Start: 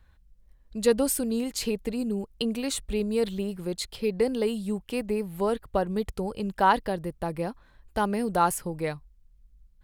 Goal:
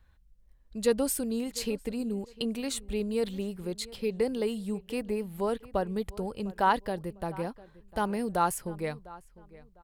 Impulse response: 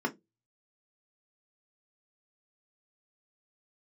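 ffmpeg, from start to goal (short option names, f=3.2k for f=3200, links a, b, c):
-filter_complex "[0:a]asplit=2[a][b];[b]adelay=702,lowpass=f=3.3k:p=1,volume=-19.5dB,asplit=2[c][d];[d]adelay=702,lowpass=f=3.3k:p=1,volume=0.28[e];[a][c][e]amix=inputs=3:normalize=0,volume=-3.5dB"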